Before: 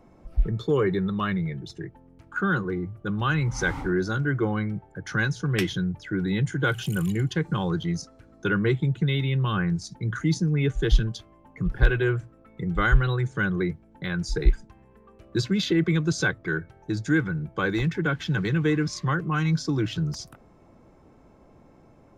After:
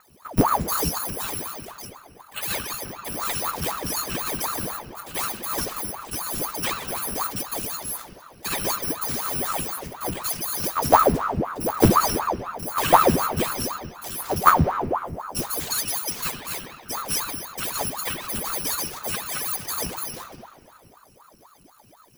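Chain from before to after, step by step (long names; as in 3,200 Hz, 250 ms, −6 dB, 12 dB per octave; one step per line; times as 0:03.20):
samples in bit-reversed order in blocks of 256 samples
high-shelf EQ 2,200 Hz −9 dB
on a send at −2.5 dB: convolution reverb RT60 2.5 s, pre-delay 4 ms
on the sum: ring modulator whose carrier an LFO sweeps 700 Hz, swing 85%, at 4 Hz
level +5.5 dB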